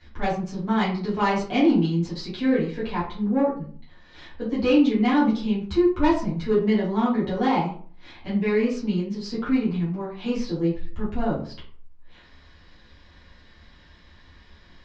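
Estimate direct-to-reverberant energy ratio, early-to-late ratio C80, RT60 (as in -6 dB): -10.5 dB, 10.5 dB, 0.45 s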